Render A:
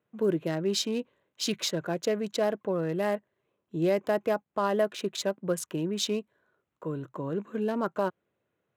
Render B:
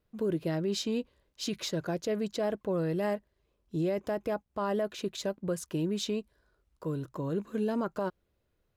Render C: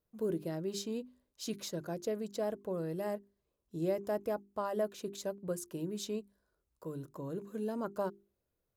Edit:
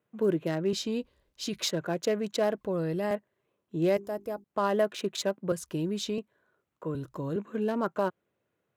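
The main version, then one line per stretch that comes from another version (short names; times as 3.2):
A
0.73–1.61 from B
2.58–3.11 from B
3.97–4.44 from C
5.52–6.18 from B
6.95–7.36 from B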